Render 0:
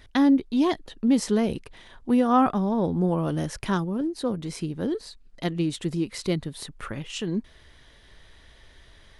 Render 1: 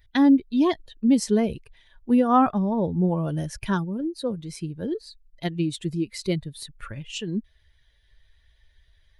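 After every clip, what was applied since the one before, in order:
spectral dynamics exaggerated over time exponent 1.5
level +3 dB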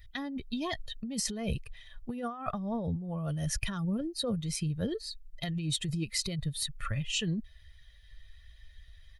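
parametric band 470 Hz −8 dB 2.3 octaves
comb filter 1.6 ms, depth 49%
compressor whose output falls as the input rises −33 dBFS, ratio −1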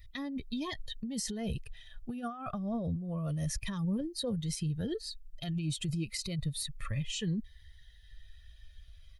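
brickwall limiter −26 dBFS, peak gain reduction 10.5 dB
phaser whose notches keep moving one way falling 0.31 Hz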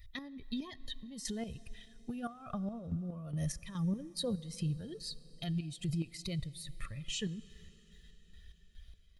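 square-wave tremolo 2.4 Hz, depth 65%, duty 45%
dense smooth reverb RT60 4.4 s, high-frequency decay 1×, DRR 18.5 dB
level −1 dB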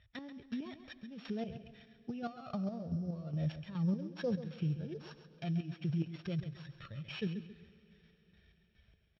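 samples sorted by size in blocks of 8 samples
loudspeaker in its box 130–3,300 Hz, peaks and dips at 260 Hz −4 dB, 1,100 Hz −7 dB, 2,000 Hz −7 dB
repeating echo 135 ms, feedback 32%, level −11.5 dB
level +2.5 dB

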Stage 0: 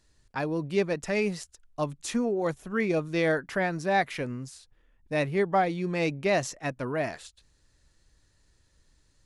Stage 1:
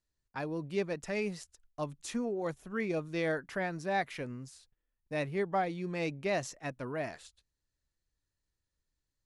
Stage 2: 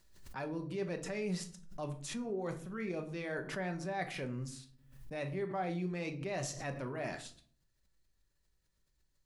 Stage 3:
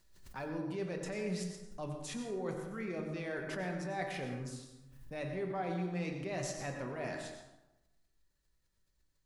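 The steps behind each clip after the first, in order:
noise gate −56 dBFS, range −14 dB; level −7 dB
reversed playback; downward compressor 6 to 1, threshold −41 dBFS, peak gain reduction 14 dB; reversed playback; rectangular room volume 420 cubic metres, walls furnished, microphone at 1.1 metres; background raised ahead of every attack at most 75 dB per second; level +3 dB
dense smooth reverb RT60 1 s, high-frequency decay 0.55×, pre-delay 80 ms, DRR 5 dB; level −1.5 dB

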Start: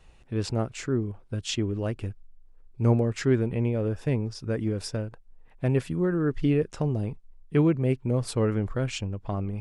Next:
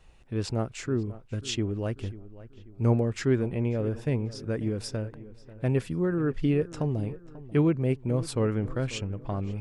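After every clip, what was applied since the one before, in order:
feedback echo with a low-pass in the loop 540 ms, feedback 45%, low-pass 2,900 Hz, level −17 dB
level −1.5 dB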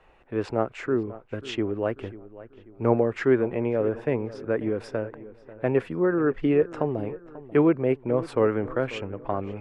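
three-way crossover with the lows and the highs turned down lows −15 dB, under 310 Hz, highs −22 dB, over 2,400 Hz
level +8.5 dB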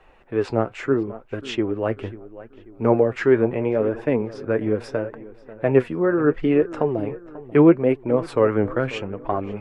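flanger 0.75 Hz, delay 2.4 ms, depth 7.7 ms, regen +58%
level +8 dB

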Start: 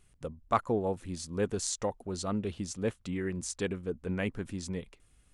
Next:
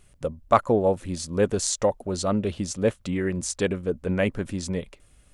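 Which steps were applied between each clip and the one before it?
parametric band 580 Hz +8 dB 0.28 octaves
level +7.5 dB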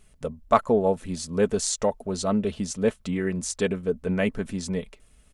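comb filter 4.6 ms, depth 45%
level −1.5 dB

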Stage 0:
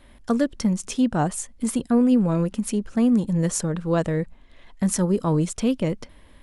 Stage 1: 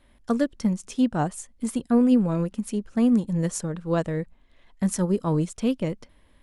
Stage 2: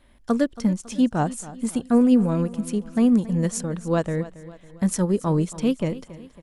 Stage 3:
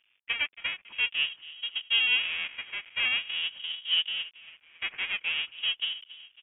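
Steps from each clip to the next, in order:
expander for the loud parts 1.5 to 1, over −31 dBFS
repeating echo 276 ms, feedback 49%, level −17 dB; level +2 dB
each half-wave held at its own peak; LFO wah 0.46 Hz 540–1,200 Hz, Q 2; voice inversion scrambler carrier 3,500 Hz; level −3 dB

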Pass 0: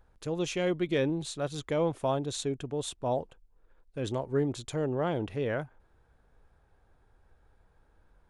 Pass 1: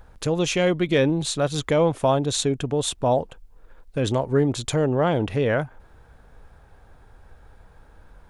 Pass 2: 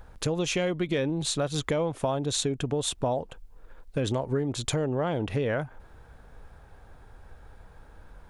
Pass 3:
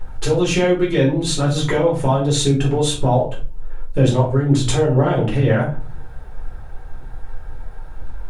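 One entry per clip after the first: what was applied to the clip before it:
in parallel at +2.5 dB: downward compressor, threshold −38 dBFS, peak gain reduction 14.5 dB; on the sum: parametric band 360 Hz −3.5 dB 0.41 octaves; level +7 dB
downward compressor 6 to 1, threshold −24 dBFS, peak gain reduction 9.5 dB
phase shifter 2 Hz, delay 2.7 ms, feedback 37%; rectangular room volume 220 cubic metres, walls furnished, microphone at 4.3 metres

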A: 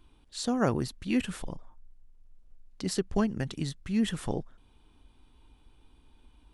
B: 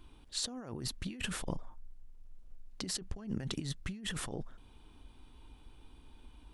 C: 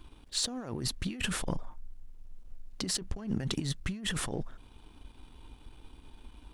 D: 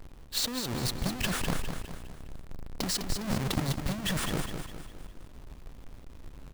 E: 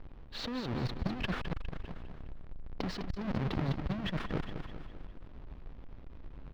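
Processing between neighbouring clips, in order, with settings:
compressor whose output falls as the input rises −37 dBFS, ratio −1; level −2.5 dB
leveller curve on the samples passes 1; level +1.5 dB
each half-wave held at its own peak; on a send: repeating echo 204 ms, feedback 46%, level −7 dB; on the sum: level −1.5 dB
high-frequency loss of the air 300 metres; saturating transformer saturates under 120 Hz

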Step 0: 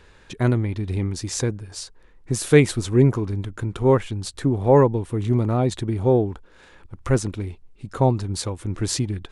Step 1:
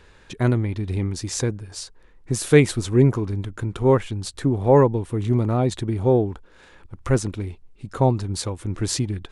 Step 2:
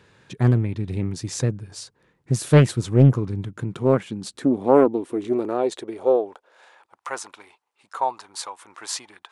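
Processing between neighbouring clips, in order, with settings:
no processing that can be heard
high-pass filter sweep 130 Hz → 930 Hz, 0:03.40–0:07.20; highs frequency-modulated by the lows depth 0.58 ms; level −3 dB

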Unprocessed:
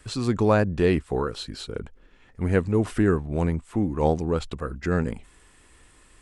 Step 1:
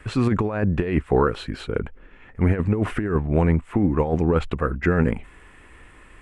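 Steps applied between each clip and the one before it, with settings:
high shelf with overshoot 3,300 Hz −11.5 dB, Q 1.5
compressor whose output falls as the input rises −23 dBFS, ratio −0.5
level +5 dB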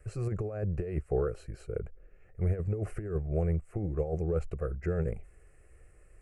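parametric band 1,700 Hz −14.5 dB 1.6 octaves
phaser with its sweep stopped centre 950 Hz, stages 6
level −6 dB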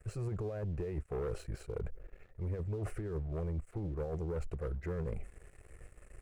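leveller curve on the samples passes 2
reversed playback
downward compressor 6 to 1, threshold −34 dBFS, peak gain reduction 11.5 dB
reversed playback
level −1.5 dB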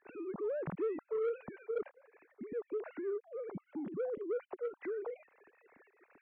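three sine waves on the formant tracks
soft clipping −29 dBFS, distortion −16 dB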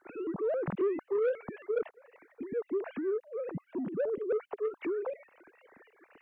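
pitch modulation by a square or saw wave saw up 3.7 Hz, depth 250 cents
level +5.5 dB

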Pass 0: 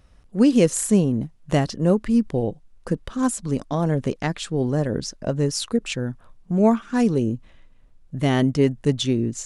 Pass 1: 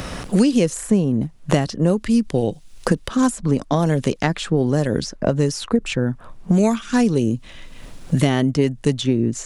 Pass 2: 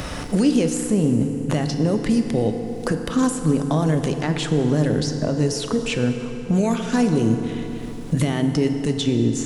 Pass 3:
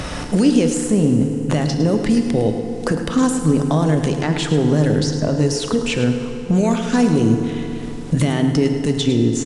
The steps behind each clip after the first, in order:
multiband upward and downward compressor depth 100%; level +2 dB
brickwall limiter −11 dBFS, peak gain reduction 9 dB; feedback delay network reverb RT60 3.7 s, high-frequency decay 0.6×, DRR 5.5 dB
on a send: single-tap delay 106 ms −11 dB; on the sum: downsampling to 22,050 Hz; level +3 dB

